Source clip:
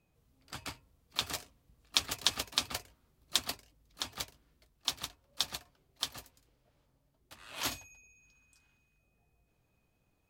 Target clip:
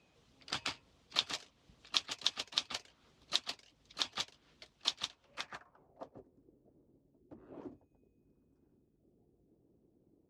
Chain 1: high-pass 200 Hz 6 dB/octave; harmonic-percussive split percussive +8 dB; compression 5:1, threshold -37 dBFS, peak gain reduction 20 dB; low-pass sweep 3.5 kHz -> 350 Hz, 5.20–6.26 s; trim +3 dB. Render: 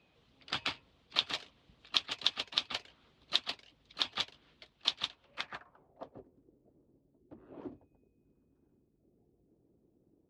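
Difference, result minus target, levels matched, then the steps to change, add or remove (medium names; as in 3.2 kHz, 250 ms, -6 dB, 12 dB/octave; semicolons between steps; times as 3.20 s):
8 kHz band -8.0 dB
add after high-pass: resonant high shelf 4.8 kHz +7.5 dB, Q 1.5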